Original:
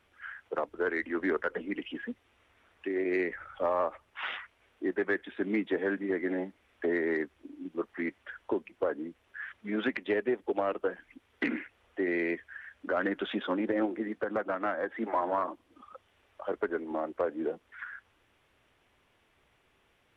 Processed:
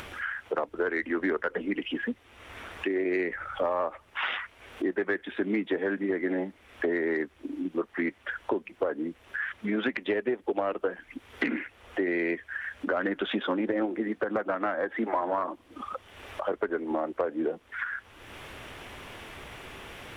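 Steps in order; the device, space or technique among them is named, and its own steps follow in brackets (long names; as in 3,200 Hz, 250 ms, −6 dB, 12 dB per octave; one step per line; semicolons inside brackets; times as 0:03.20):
upward and downward compression (upward compression, threshold −38 dBFS; downward compressor 3 to 1, threshold −36 dBFS, peak gain reduction 9 dB)
level +9 dB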